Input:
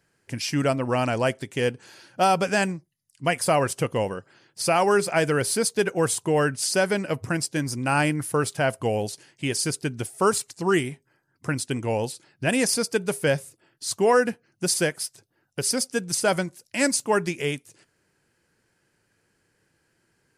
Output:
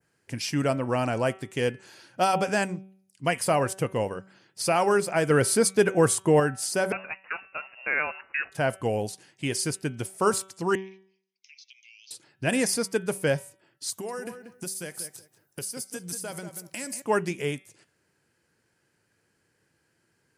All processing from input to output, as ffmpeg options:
-filter_complex "[0:a]asettb=1/sr,asplit=3[a][b][c];[a]atrim=end=5.304[d];[b]atrim=start=5.3:end=6.4,asetpts=PTS-STARTPTS,afade=t=in:d=0.004:c=qsin,afade=t=out:st=1.096:d=0.004:c=qsin,lowpass=12k,acontrast=29[e];[c]atrim=start=6.396[f];[d][e]acrossfade=d=0.004:c1=hsin:c2=qsin[g];[g][f]acrossfade=d=0.004:c1=qsin:c2=hsin,asettb=1/sr,asplit=3[h][i][j];[h]atrim=end=6.924[k];[i]atrim=start=6.92:end=8.52,asetpts=PTS-STARTPTS,afade=t=in:d=0.004:c=qsin,afade=t=out:st=1.596:d=0.004:c=qsin,highpass=580,lowpass=f=2.6k:t=q:w=0.5098,lowpass=f=2.6k:t=q:w=0.6013,lowpass=f=2.6k:t=q:w=0.9,lowpass=f=2.6k:t=q:w=2.563,afreqshift=-3000[l];[j]atrim=start=8.516[m];[k][l]acrossfade=d=0.004:c1=hsin:c2=qsin[n];[n][m]acrossfade=d=0.004:c1=qsin:c2=hsin,asettb=1/sr,asplit=3[o][p][q];[o]atrim=end=10.754[r];[p]atrim=start=10.75:end=12.11,asetpts=PTS-STARTPTS,afade=t=in:d=0.004:c=qsin,afade=t=out:st=1.356:d=0.004:c=qsin,asuperpass=centerf=3700:order=20:qfactor=0.89,acompressor=threshold=-47dB:ratio=4:attack=3.2:release=140:knee=1:detection=peak,afreqshift=49[s];[q]atrim=start=12.106[t];[r][s]acrossfade=d=0.004:c1=hsin:c2=qsin[u];[u][t]acrossfade=d=0.004:c1=qsin:c2=hsin,asettb=1/sr,asplit=3[v][w][x];[v]atrim=end=13.904[y];[w]atrim=start=13.9:end=17.02,asetpts=PTS-STARTPTS,afade=t=in:d=0.004:c=qsin,afade=t=out:st=3.116:d=0.004:c=qsin,aemphasis=mode=production:type=50fm,acompressor=threshold=-29dB:ratio=10:attack=3.2:release=140:knee=1:detection=peak,asplit=2[z][aa];[aa]adelay=186,lowpass=f=1.9k:p=1,volume=-8.5dB,asplit=2[ab][ac];[ac]adelay=186,lowpass=f=1.9k:p=1,volume=0.21,asplit=2[ad][ae];[ae]adelay=186,lowpass=f=1.9k:p=1,volume=0.21[af];[z][ab][ad][af]amix=inputs=4:normalize=0,atrim=end_sample=137592[ag];[x]atrim=start=17.016[ah];[y][ag]acrossfade=d=0.004:c1=hsin:c2=qsin[ai];[ai][ah]acrossfade=d=0.004:c1=qsin:c2=hsin,highpass=60,adynamicequalizer=threshold=0.00891:dfrequency=3800:dqfactor=0.74:tfrequency=3800:tqfactor=0.74:attack=5:release=100:ratio=0.375:range=3:mode=cutabove:tftype=bell,bandreject=f=190.8:t=h:w=4,bandreject=f=381.6:t=h:w=4,bandreject=f=572.4:t=h:w=4,bandreject=f=763.2:t=h:w=4,bandreject=f=954:t=h:w=4,bandreject=f=1.1448k:t=h:w=4,bandreject=f=1.3356k:t=h:w=4,bandreject=f=1.5264k:t=h:w=4,bandreject=f=1.7172k:t=h:w=4,bandreject=f=1.908k:t=h:w=4,bandreject=f=2.0988k:t=h:w=4,bandreject=f=2.2896k:t=h:w=4,bandreject=f=2.4804k:t=h:w=4,bandreject=f=2.6712k:t=h:w=4,bandreject=f=2.862k:t=h:w=4,bandreject=f=3.0528k:t=h:w=4,bandreject=f=3.2436k:t=h:w=4,bandreject=f=3.4344k:t=h:w=4,bandreject=f=3.6252k:t=h:w=4,bandreject=f=3.816k:t=h:w=4,volume=-2dB"

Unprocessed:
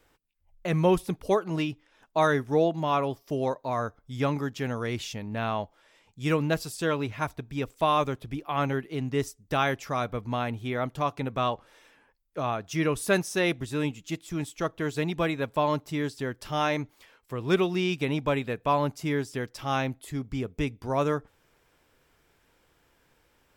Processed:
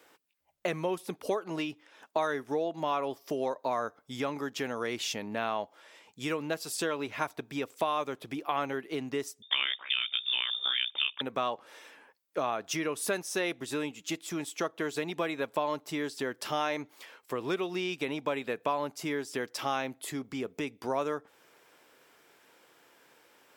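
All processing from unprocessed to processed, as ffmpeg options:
-filter_complex "[0:a]asettb=1/sr,asplit=3[a][b][c];[a]atrim=end=9.424[d];[b]atrim=start=9.42:end=11.21,asetpts=PTS-STARTPTS,afade=t=in:d=0.004:c=qsin,afade=t=out:st=1.786:d=0.004:c=qsin,tremolo=f=64:d=0.947,acontrast=51,lowpass=f=3.1k:t=q:w=0.5098,lowpass=f=3.1k:t=q:w=0.6013,lowpass=f=3.1k:t=q:w=0.9,lowpass=f=3.1k:t=q:w=2.563,afreqshift=-3700[e];[c]atrim=start=11.206[f];[d][e]acrossfade=d=0.004:c1=hsin:c2=qsin[g];[g][f]acrossfade=d=0.004:c1=qsin:c2=hsin,acompressor=threshold=-33dB:ratio=6,highpass=300,volume=6dB"

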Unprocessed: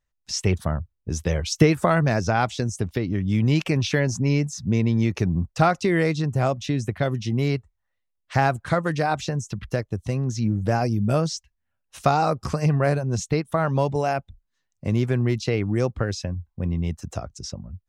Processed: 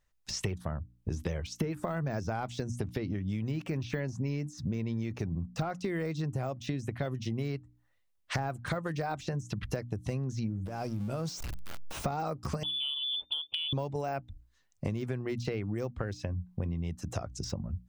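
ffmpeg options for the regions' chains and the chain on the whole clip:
-filter_complex "[0:a]asettb=1/sr,asplit=3[a][b][c];[a]atrim=end=10.664[d];[b]atrim=start=10.66:end=12.06,asetpts=PTS-STARTPTS,afade=t=in:d=0.004:c=qsin,afade=t=out:st=1.396:d=0.004:c=qsin,aeval=exprs='val(0)+0.5*0.0224*sgn(val(0))':c=same,equalizer=f=1.8k:t=o:w=0.21:g=-6,acompressor=threshold=-31dB:ratio=16:attack=3.2:release=140:knee=1:detection=peak[e];[c]atrim=start=12.056[f];[d][e]acrossfade=d=0.004:c1=hsin:c2=qsin[g];[g][f]acrossfade=d=0.004:c1=qsin:c2=hsin,asettb=1/sr,asplit=3[h][i][j];[h]atrim=end=12.634[k];[i]atrim=start=12.63:end=13.73,asetpts=PTS-STARTPTS,afade=t=in:d=0.004:c=qsin,afade=t=out:st=1.096:d=0.004:c=qsin,asuperstop=centerf=1700:order=4:qfactor=0.58,lowpass=f=3.1k:t=q:w=0.5098,lowpass=f=3.1k:t=q:w=0.6013,lowpass=f=3.1k:t=q:w=0.9,lowpass=f=3.1k:t=q:w=2.563,afreqshift=-3600[l];[j]atrim=start=13.726[m];[k][l]acrossfade=d=0.004:c1=hsin:c2=qsin[n];[n][m]acrossfade=d=0.004:c1=qsin:c2=hsin,deesser=1,bandreject=f=60:t=h:w=6,bandreject=f=120:t=h:w=6,bandreject=f=180:t=h:w=6,bandreject=f=240:t=h:w=6,bandreject=f=300:t=h:w=6,acompressor=threshold=-35dB:ratio=10,volume=4.5dB"

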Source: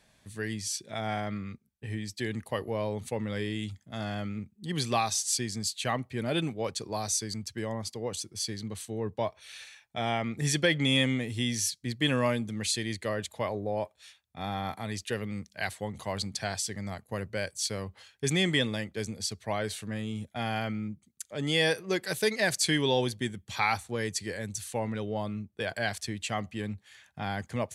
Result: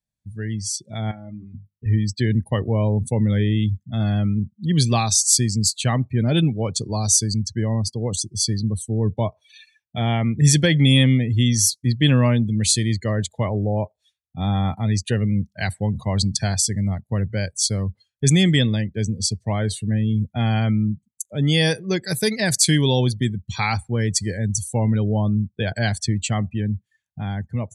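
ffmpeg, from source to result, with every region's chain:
-filter_complex "[0:a]asettb=1/sr,asplit=3[a][b][c];[a]atrim=end=1.114[d];[b]atrim=start=1.11:end=1.86,asetpts=PTS-STARTPTS,afade=t=in:d=0.004:c=qsin,afade=t=out:st=0.746:d=0.004:c=qsin,bandreject=f=50:t=h:w=6,bandreject=f=100:t=h:w=6,bandreject=f=150:t=h:w=6,bandreject=f=200:t=h:w=6,acompressor=threshold=-50dB:ratio=2:attack=3.2:release=140:knee=1:detection=peak,asplit=2[e][f];[f]adelay=13,volume=-5dB[g];[e][g]amix=inputs=2:normalize=0,atrim=end_sample=33075[h];[c]atrim=start=1.856[i];[d][h]acrossfade=d=0.004:c1=hsin:c2=qsin[j];[j][i]acrossfade=d=0.004:c1=qsin:c2=hsin,afftdn=nr=31:nf=-41,bass=f=250:g=14,treble=f=4k:g=10,dynaudnorm=f=130:g=21:m=7dB,volume=-1.5dB"

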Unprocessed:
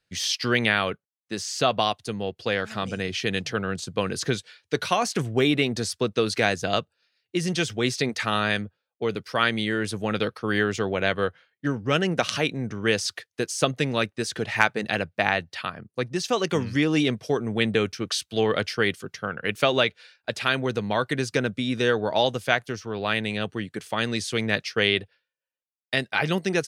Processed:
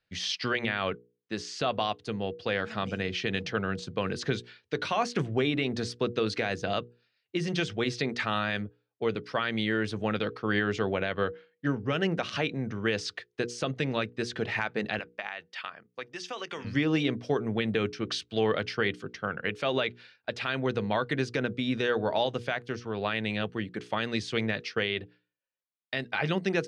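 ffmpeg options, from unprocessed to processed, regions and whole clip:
-filter_complex "[0:a]asettb=1/sr,asplit=3[a][b][c];[a]atrim=end=14.994[d];[b]atrim=start=14.99:end=16.65,asetpts=PTS-STARTPTS,afade=t=in:d=0.004:c=qsin,afade=t=out:st=1.656:d=0.004:c=qsin,highpass=f=1.2k:p=1,bandreject=f=4.1k:w=8.2,acompressor=threshold=-28dB:ratio=12:attack=3.2:release=140:knee=1:detection=peak[e];[c]atrim=start=16.646[f];[d][e]acrossfade=d=0.004:c1=hsin:c2=qsin[g];[g][f]acrossfade=d=0.004:c1=qsin:c2=hsin,alimiter=limit=-13dB:level=0:latency=1:release=71,lowpass=4.1k,bandreject=f=60:t=h:w=6,bandreject=f=120:t=h:w=6,bandreject=f=180:t=h:w=6,bandreject=f=240:t=h:w=6,bandreject=f=300:t=h:w=6,bandreject=f=360:t=h:w=6,bandreject=f=420:t=h:w=6,bandreject=f=480:t=h:w=6,volume=-2dB"

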